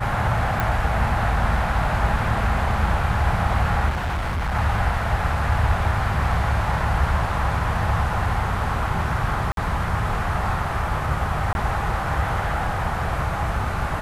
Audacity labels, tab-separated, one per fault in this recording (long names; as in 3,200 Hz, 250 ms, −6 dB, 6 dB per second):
0.600000	0.600000	click
3.890000	4.550000	clipping −21.5 dBFS
9.520000	9.570000	drop-out 52 ms
11.530000	11.550000	drop-out 21 ms